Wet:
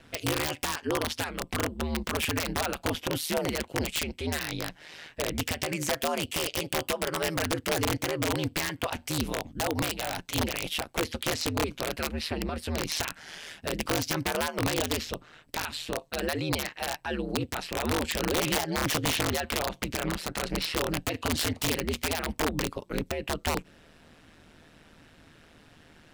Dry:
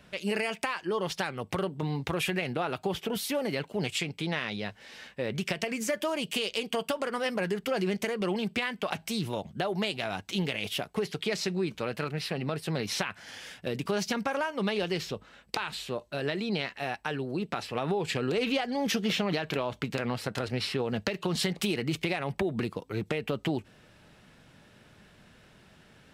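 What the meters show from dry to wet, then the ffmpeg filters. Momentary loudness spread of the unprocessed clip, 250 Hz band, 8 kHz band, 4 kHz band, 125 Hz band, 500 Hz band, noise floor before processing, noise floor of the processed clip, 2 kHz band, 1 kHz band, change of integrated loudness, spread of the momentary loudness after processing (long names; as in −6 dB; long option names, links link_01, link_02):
5 LU, −0.5 dB, +8.0 dB, +2.5 dB, +0.5 dB, −1.0 dB, −58 dBFS, −57 dBFS, +1.5 dB, +2.0 dB, +1.5 dB, 6 LU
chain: -af "aeval=exprs='val(0)*sin(2*PI*78*n/s)':channel_layout=same,aeval=exprs='(mod(15*val(0)+1,2)-1)/15':channel_layout=same,volume=4.5dB"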